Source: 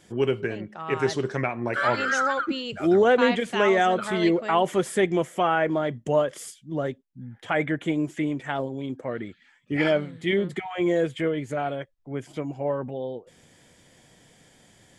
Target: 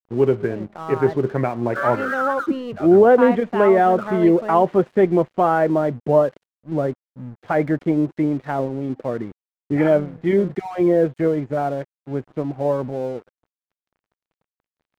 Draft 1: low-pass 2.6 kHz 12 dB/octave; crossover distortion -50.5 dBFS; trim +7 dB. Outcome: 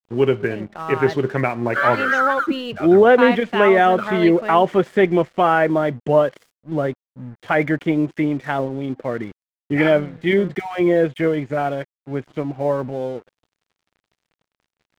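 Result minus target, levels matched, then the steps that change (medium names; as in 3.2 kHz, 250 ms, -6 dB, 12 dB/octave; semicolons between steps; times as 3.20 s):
2 kHz band +6.5 dB
change: low-pass 1.1 kHz 12 dB/octave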